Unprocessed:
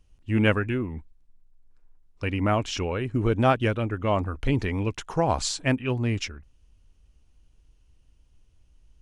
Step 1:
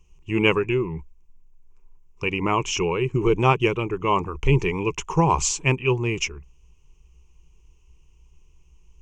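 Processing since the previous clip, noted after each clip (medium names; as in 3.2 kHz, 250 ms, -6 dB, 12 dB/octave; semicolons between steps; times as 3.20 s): rippled EQ curve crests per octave 0.74, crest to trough 16 dB; trim +1.5 dB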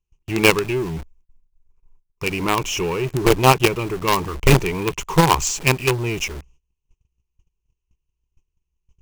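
in parallel at -4 dB: companded quantiser 2-bit; on the sum: gate -47 dBFS, range -21 dB; trim -2.5 dB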